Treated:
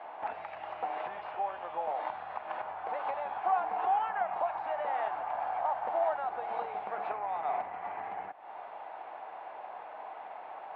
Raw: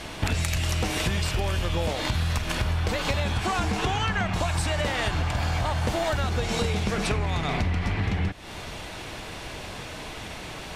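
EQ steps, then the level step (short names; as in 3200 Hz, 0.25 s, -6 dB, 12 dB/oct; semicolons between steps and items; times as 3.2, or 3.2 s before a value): ladder band-pass 860 Hz, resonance 65%; air absorption 400 m; +6.5 dB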